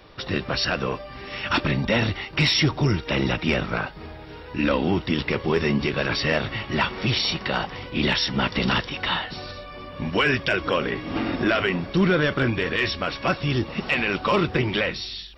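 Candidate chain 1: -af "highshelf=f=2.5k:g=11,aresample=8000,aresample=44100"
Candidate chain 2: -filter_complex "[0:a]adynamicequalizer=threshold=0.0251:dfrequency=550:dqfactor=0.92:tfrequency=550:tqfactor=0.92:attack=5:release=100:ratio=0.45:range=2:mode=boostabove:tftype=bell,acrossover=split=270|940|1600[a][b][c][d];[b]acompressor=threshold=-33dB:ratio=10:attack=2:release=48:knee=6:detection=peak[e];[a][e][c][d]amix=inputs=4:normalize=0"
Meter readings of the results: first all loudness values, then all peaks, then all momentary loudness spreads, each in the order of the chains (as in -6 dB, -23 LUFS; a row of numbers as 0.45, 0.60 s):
-21.0, -24.5 LUFS; -5.5, -9.0 dBFS; 9, 9 LU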